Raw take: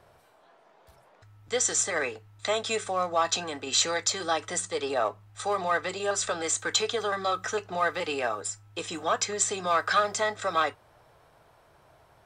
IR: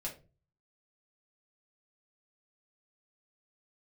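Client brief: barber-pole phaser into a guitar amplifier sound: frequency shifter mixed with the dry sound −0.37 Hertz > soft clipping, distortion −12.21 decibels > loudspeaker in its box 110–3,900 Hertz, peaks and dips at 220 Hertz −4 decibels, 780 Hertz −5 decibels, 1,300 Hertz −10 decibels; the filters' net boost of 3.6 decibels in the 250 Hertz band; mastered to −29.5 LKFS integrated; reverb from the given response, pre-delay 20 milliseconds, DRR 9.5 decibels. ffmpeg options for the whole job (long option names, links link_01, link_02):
-filter_complex "[0:a]equalizer=frequency=250:width_type=o:gain=7,asplit=2[link_01][link_02];[1:a]atrim=start_sample=2205,adelay=20[link_03];[link_02][link_03]afir=irnorm=-1:irlink=0,volume=-9.5dB[link_04];[link_01][link_04]amix=inputs=2:normalize=0,asplit=2[link_05][link_06];[link_06]afreqshift=-0.37[link_07];[link_05][link_07]amix=inputs=2:normalize=1,asoftclip=threshold=-25dB,highpass=110,equalizer=frequency=220:width_type=q:width=4:gain=-4,equalizer=frequency=780:width_type=q:width=4:gain=-5,equalizer=frequency=1300:width_type=q:width=4:gain=-10,lowpass=frequency=3900:width=0.5412,lowpass=frequency=3900:width=1.3066,volume=6.5dB"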